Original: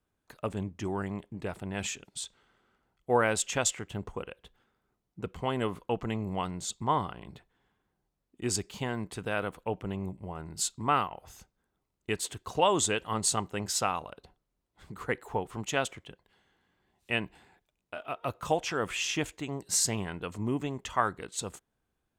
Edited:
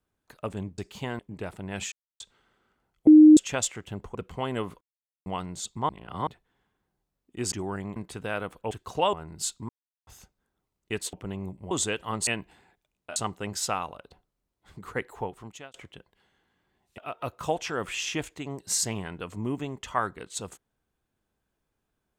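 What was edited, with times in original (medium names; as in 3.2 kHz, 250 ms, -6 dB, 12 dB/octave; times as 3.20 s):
0.78–1.22 s: swap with 8.57–8.98 s
1.95–2.23 s: mute
3.10–3.40 s: bleep 307 Hz -8.5 dBFS
4.18–5.20 s: delete
5.86–6.31 s: mute
6.94–7.32 s: reverse
9.73–10.31 s: swap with 12.31–12.73 s
10.87–11.25 s: mute
15.28–15.87 s: fade out
17.11–18.00 s: move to 13.29 s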